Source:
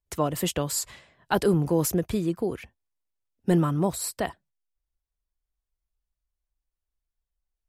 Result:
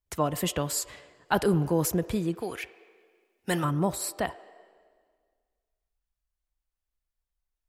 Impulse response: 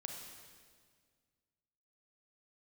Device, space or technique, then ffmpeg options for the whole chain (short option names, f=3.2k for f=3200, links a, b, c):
filtered reverb send: -filter_complex "[0:a]asplit=2[a][b];[b]highpass=f=370:w=0.5412,highpass=f=370:w=1.3066,lowpass=3k[c];[1:a]atrim=start_sample=2205[d];[c][d]afir=irnorm=-1:irlink=0,volume=-8dB[e];[a][e]amix=inputs=2:normalize=0,asplit=3[f][g][h];[f]afade=t=out:st=2.4:d=0.02[i];[g]tiltshelf=f=670:g=-9.5,afade=t=in:st=2.4:d=0.02,afade=t=out:st=3.63:d=0.02[j];[h]afade=t=in:st=3.63:d=0.02[k];[i][j][k]amix=inputs=3:normalize=0,volume=-1.5dB"